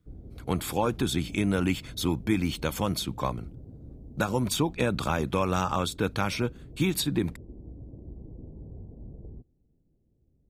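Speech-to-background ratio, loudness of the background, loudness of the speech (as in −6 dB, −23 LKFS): 18.0 dB, −46.5 LKFS, −28.5 LKFS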